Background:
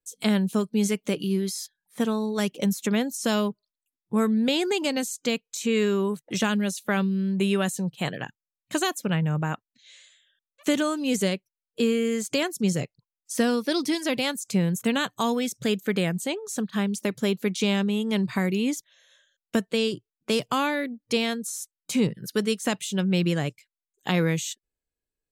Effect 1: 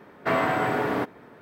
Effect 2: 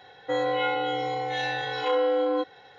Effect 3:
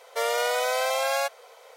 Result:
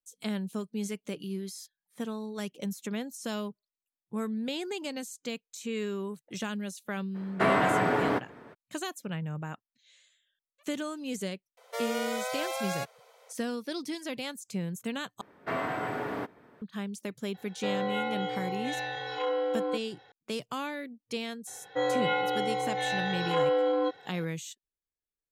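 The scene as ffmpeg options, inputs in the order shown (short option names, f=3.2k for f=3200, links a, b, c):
-filter_complex "[1:a]asplit=2[a][b];[2:a]asplit=2[c][d];[0:a]volume=-10.5dB[e];[a]lowpass=11k[f];[b]aresample=32000,aresample=44100[g];[d]highpass=92[h];[e]asplit=2[i][j];[i]atrim=end=15.214[k];[g]atrim=end=1.41,asetpts=PTS-STARTPTS,volume=-8.5dB[l];[j]atrim=start=16.616[m];[f]atrim=end=1.41,asetpts=PTS-STARTPTS,volume=-1dB,afade=t=in:d=0.02,afade=t=out:st=1.39:d=0.02,adelay=314874S[n];[3:a]atrim=end=1.76,asetpts=PTS-STARTPTS,volume=-8.5dB,afade=t=in:d=0.004:c=hsin,afade=t=out:st=1.756:d=0.004:c=hsin,adelay=11570[o];[c]atrim=end=2.78,asetpts=PTS-STARTPTS,volume=-6dB,afade=t=in:d=0.004:c=hsin,afade=t=out:st=2.776:d=0.004:c=hsin,adelay=17340[p];[h]atrim=end=2.78,asetpts=PTS-STARTPTS,volume=-2dB,afade=t=in:d=0.004:c=hsin,afade=t=out:st=2.776:d=0.004:c=hsin,adelay=21470[q];[k][l]acrossfade=d=0.004:c1=hsin:c2=hsin[r];[r][m]acrossfade=d=0.004:c1=hsin:c2=hsin[s];[s][n][o][p][q]amix=inputs=5:normalize=0"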